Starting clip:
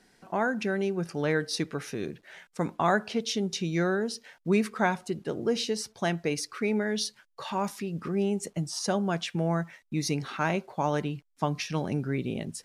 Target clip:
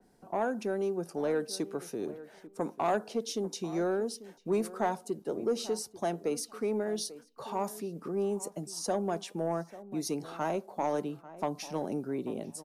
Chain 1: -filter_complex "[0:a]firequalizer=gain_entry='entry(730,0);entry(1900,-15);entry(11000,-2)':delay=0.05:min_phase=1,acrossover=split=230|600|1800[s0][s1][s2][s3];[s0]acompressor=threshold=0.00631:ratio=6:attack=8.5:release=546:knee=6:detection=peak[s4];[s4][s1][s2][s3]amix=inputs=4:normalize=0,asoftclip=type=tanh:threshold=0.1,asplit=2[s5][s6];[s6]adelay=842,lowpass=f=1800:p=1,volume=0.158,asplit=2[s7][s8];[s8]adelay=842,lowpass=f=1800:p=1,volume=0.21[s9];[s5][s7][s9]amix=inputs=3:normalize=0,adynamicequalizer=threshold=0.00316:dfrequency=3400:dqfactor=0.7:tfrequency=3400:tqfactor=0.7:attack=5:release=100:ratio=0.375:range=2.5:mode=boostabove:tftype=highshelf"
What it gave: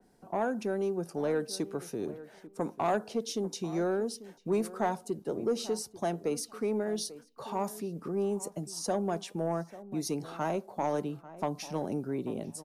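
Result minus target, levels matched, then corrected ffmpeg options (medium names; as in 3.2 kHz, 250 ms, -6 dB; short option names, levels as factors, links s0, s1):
compression: peak gain reduction -7.5 dB
-filter_complex "[0:a]firequalizer=gain_entry='entry(730,0);entry(1900,-15);entry(11000,-2)':delay=0.05:min_phase=1,acrossover=split=230|600|1800[s0][s1][s2][s3];[s0]acompressor=threshold=0.00224:ratio=6:attack=8.5:release=546:knee=6:detection=peak[s4];[s4][s1][s2][s3]amix=inputs=4:normalize=0,asoftclip=type=tanh:threshold=0.1,asplit=2[s5][s6];[s6]adelay=842,lowpass=f=1800:p=1,volume=0.158,asplit=2[s7][s8];[s8]adelay=842,lowpass=f=1800:p=1,volume=0.21[s9];[s5][s7][s9]amix=inputs=3:normalize=0,adynamicequalizer=threshold=0.00316:dfrequency=3400:dqfactor=0.7:tfrequency=3400:tqfactor=0.7:attack=5:release=100:ratio=0.375:range=2.5:mode=boostabove:tftype=highshelf"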